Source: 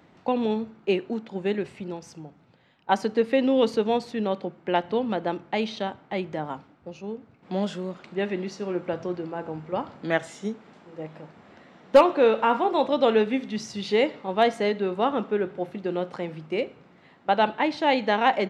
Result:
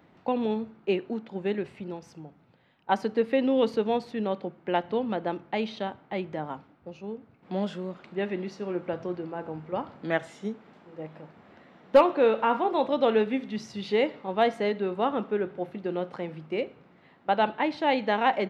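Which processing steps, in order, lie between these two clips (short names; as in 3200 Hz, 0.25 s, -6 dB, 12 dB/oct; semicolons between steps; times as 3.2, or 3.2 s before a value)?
bell 7300 Hz -7.5 dB 1.3 oct; gain -2.5 dB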